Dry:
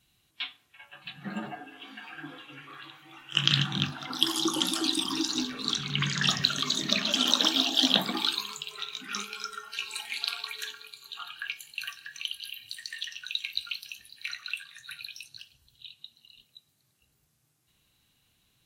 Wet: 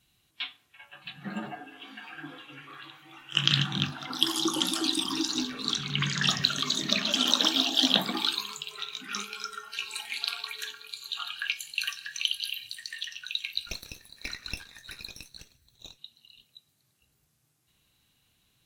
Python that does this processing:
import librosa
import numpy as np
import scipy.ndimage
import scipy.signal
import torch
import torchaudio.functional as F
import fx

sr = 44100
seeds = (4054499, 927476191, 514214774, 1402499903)

y = fx.peak_eq(x, sr, hz=5500.0, db=8.5, octaves=2.5, at=(10.89, 12.68))
y = fx.lower_of_two(y, sr, delay_ms=0.5, at=(13.66, 15.97), fade=0.02)